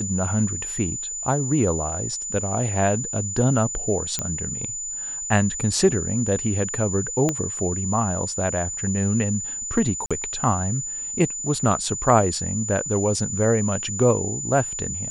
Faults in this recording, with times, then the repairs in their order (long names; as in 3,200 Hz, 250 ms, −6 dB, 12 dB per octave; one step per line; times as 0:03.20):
whistle 7,000 Hz −28 dBFS
0:04.19: click −9 dBFS
0:07.29: click −9 dBFS
0:10.06–0:10.11: drop-out 46 ms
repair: click removal
notch filter 7,000 Hz, Q 30
repair the gap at 0:10.06, 46 ms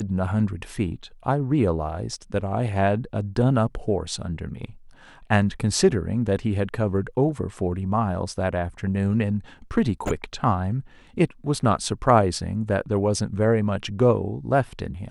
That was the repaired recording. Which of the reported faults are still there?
0:07.29: click